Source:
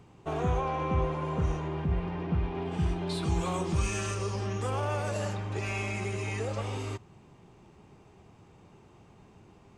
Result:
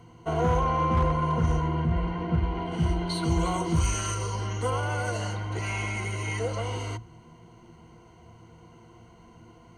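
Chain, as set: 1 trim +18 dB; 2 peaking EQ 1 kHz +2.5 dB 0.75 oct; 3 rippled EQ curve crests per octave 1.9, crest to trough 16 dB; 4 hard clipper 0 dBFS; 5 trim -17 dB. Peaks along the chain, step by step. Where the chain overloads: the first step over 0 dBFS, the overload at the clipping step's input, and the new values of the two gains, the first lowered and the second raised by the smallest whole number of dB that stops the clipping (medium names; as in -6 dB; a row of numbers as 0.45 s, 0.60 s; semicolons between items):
+1.0 dBFS, +1.5 dBFS, +5.5 dBFS, 0.0 dBFS, -17.0 dBFS; step 1, 5.5 dB; step 1 +12 dB, step 5 -11 dB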